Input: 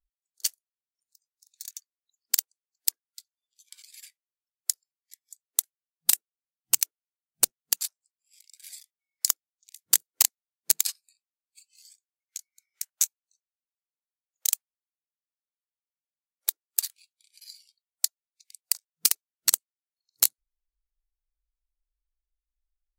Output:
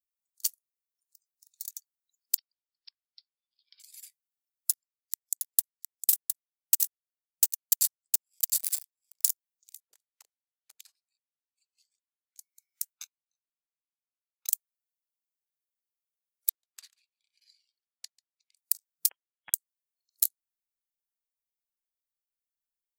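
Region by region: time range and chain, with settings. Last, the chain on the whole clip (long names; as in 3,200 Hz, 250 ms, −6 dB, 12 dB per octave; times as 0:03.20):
0:02.37–0:03.80: downward compressor 2.5 to 1, threshold −35 dBFS + linear-phase brick-wall band-pass 860–5,500 Hz
0:04.70–0:09.30: leveller curve on the samples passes 5 + single-tap delay 710 ms −9.5 dB
0:09.80–0:12.38: downward compressor 8 to 1, threshold −26 dBFS + auto-filter band-pass sine 6.1 Hz 430–3,700 Hz
0:12.93–0:14.49: high-frequency loss of the air 290 metres + comb filter 0.8 ms, depth 95%
0:16.49–0:18.57: low-pass filter 2,500 Hz + single-tap delay 142 ms −23 dB
0:19.09–0:19.54: high-pass filter 220 Hz + high-frequency loss of the air 170 metres + voice inversion scrambler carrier 3,600 Hz
whole clip: RIAA equalisation recording; downward compressor 6 to 1, threshold −8 dBFS; level −13 dB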